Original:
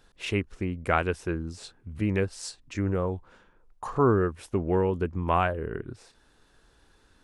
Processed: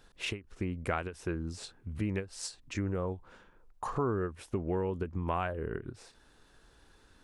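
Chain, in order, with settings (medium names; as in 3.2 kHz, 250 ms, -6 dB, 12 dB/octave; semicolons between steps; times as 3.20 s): compression 2.5:1, threshold -32 dBFS, peak gain reduction 10.5 dB; endings held to a fixed fall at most 220 dB/s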